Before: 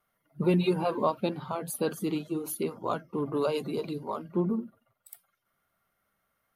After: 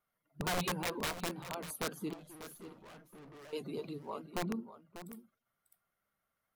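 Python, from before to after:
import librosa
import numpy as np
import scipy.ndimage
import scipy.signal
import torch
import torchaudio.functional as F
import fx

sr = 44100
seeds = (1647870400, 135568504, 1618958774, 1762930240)

p1 = (np.mod(10.0 ** (20.5 / 20.0) * x + 1.0, 2.0) - 1.0) / 10.0 ** (20.5 / 20.0)
p2 = fx.tube_stage(p1, sr, drive_db=44.0, bias=0.55, at=(2.13, 3.53))
p3 = p2 + fx.echo_single(p2, sr, ms=594, db=-12.5, dry=0)
p4 = fx.vibrato(p3, sr, rate_hz=11.0, depth_cents=39.0)
y = p4 * 10.0 ** (-8.5 / 20.0)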